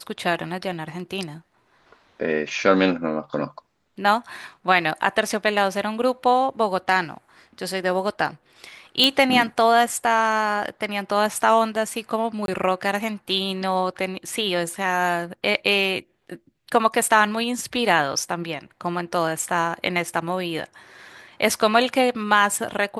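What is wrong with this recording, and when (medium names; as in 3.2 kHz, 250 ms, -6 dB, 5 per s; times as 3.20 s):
9.04 s: pop -4 dBFS
12.46–12.48 s: dropout 22 ms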